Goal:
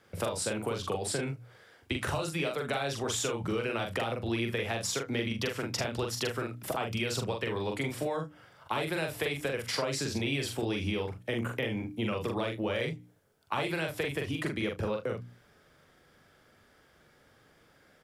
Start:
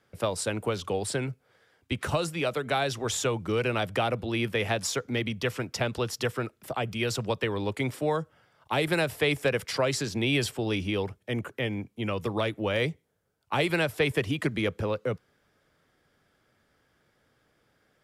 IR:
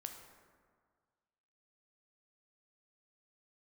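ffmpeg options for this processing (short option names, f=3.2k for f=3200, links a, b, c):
-filter_complex "[0:a]bandreject=f=60:t=h:w=6,bandreject=f=120:t=h:w=6,bandreject=f=180:t=h:w=6,bandreject=f=240:t=h:w=6,bandreject=f=300:t=h:w=6,acompressor=threshold=-35dB:ratio=12,asplit=2[a][b];[b]aecho=0:1:43|76:0.668|0.15[c];[a][c]amix=inputs=2:normalize=0,volume=5dB"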